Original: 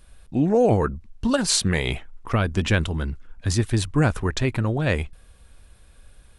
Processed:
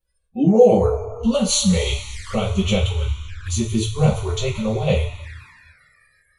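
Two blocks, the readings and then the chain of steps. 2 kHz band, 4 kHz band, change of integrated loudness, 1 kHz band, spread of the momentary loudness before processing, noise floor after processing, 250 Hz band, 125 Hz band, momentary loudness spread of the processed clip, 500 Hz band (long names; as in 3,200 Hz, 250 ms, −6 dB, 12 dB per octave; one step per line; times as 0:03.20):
−4.5 dB, +3.0 dB, +3.5 dB, +1.0 dB, 10 LU, −66 dBFS, +3.5 dB, +2.0 dB, 14 LU, +6.0 dB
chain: coupled-rooms reverb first 0.29 s, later 3.1 s, from −18 dB, DRR −9 dB
flanger swept by the level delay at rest 2.3 ms, full sweep at −17 dBFS
noise reduction from a noise print of the clip's start 25 dB
level −4.5 dB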